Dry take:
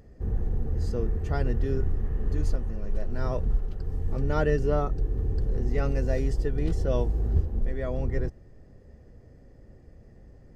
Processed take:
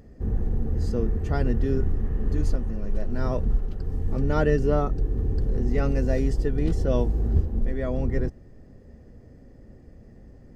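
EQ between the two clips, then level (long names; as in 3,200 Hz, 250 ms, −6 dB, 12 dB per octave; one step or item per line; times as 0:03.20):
parametric band 240 Hz +5.5 dB 0.71 octaves
+2.0 dB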